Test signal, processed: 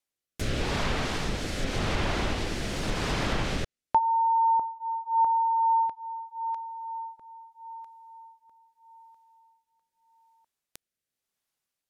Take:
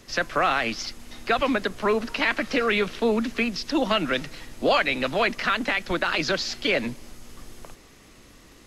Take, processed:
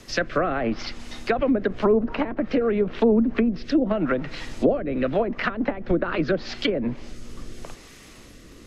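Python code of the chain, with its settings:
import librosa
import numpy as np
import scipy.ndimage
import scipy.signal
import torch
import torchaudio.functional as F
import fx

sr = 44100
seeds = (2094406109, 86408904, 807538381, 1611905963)

y = fx.rotary(x, sr, hz=0.85)
y = fx.env_lowpass_down(y, sr, base_hz=450.0, full_db=-21.5)
y = y * 10.0 ** (7.0 / 20.0)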